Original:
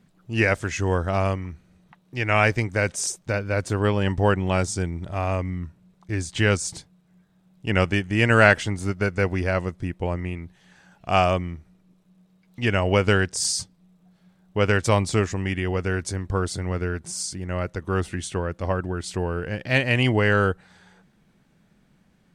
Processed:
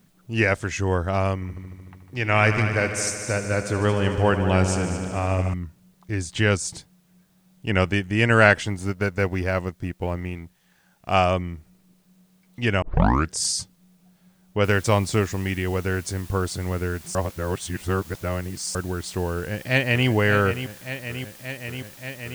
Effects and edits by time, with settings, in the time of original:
0:01.34–0:05.54: echo machine with several playback heads 75 ms, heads all three, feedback 63%, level −13.5 dB
0:08.65–0:11.13: mu-law and A-law mismatch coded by A
0:12.82: tape start 0.48 s
0:14.64: noise floor change −69 dB −47 dB
0:17.15–0:18.75: reverse
0:19.35–0:20.08: delay throw 580 ms, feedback 85%, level −10 dB

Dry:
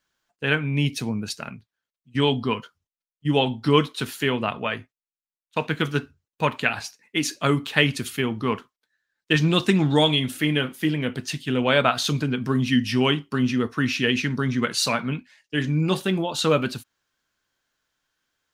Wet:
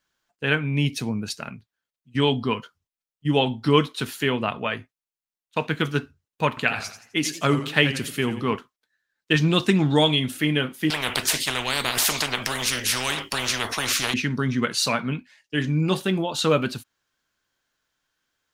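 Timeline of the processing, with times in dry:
0:06.48–0:08.56: feedback echo with a swinging delay time 86 ms, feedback 38%, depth 125 cents, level −11 dB
0:10.90–0:14.14: every bin compressed towards the loudest bin 10 to 1

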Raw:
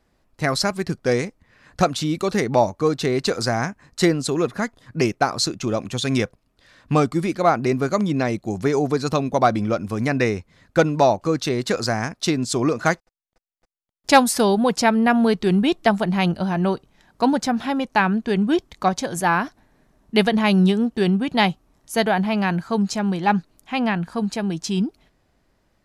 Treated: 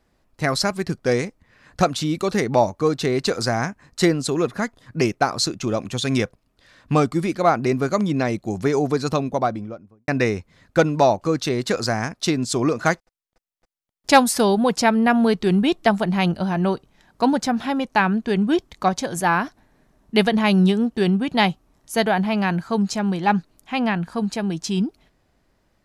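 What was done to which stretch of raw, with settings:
0:09.01–0:10.08: fade out and dull

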